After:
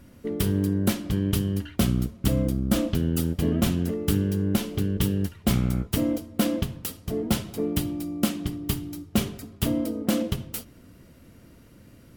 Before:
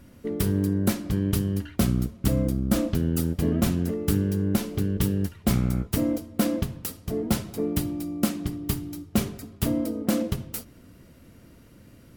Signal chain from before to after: dynamic bell 3.1 kHz, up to +6 dB, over -54 dBFS, Q 2.7

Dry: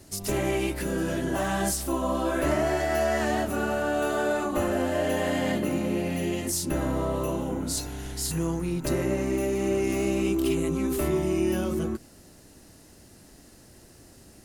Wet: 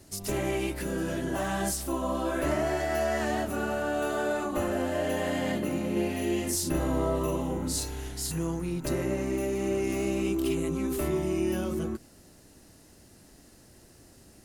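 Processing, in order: 5.92–8.09 s: doubling 43 ms -2 dB; trim -3 dB

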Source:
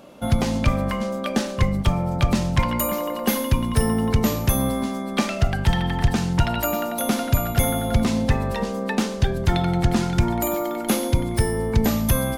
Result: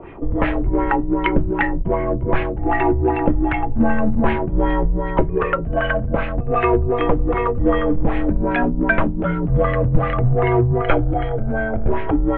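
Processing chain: LFO low-pass sine 2.6 Hz 290–2400 Hz; in parallel at -7 dB: saturation -20.5 dBFS, distortion -8 dB; 10.81–11.90 s: on the sum: comb 1.2 ms, depth 69%; mistuned SSB -220 Hz 210–3300 Hz; trim +4.5 dB

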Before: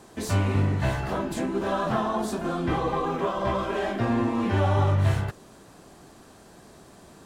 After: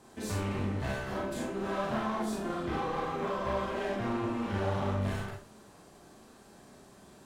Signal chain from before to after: one-sided clip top -28 dBFS; Schroeder reverb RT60 0.35 s, combs from 29 ms, DRR -1 dB; trim -8.5 dB

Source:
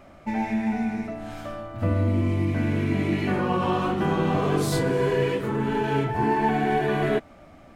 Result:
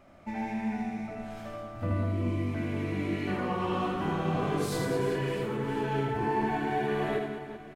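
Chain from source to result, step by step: reverse bouncing-ball echo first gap 80 ms, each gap 1.5×, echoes 5; trim -8 dB

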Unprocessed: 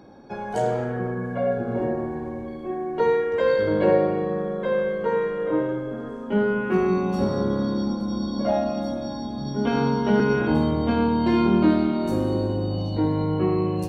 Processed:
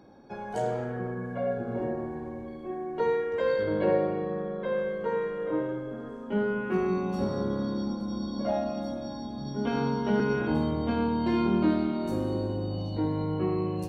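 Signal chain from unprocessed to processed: 3.63–4.77 s: low-pass 5 kHz 24 dB/octave; trim -6 dB

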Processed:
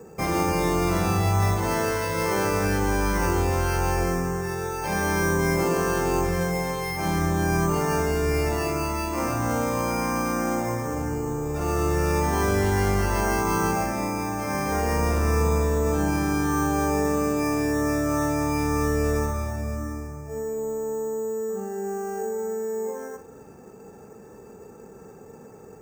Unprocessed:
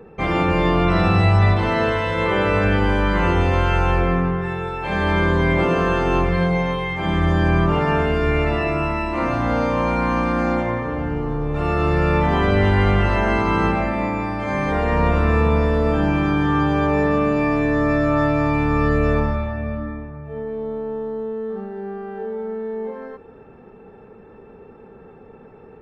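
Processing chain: high-pass 58 Hz; treble shelf 4.3 kHz -8.5 dB; in parallel at 0 dB: compression, threshold -26 dBFS, peak gain reduction 13 dB; on the sum: flutter echo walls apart 7.4 m, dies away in 0.28 s; on a send at -18 dB: reverberation RT60 0.30 s, pre-delay 6 ms; on the sum: careless resampling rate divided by 6×, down none, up hold; trim -7.5 dB

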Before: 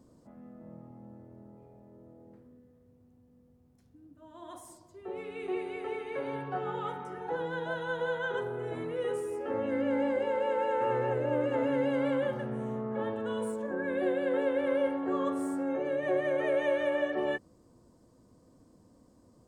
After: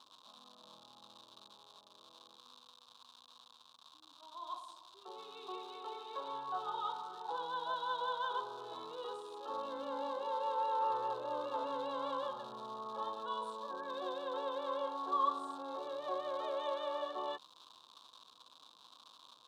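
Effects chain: crackle 280 per s -39 dBFS; two resonant band-passes 2 kHz, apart 1.8 oct; trim +8.5 dB

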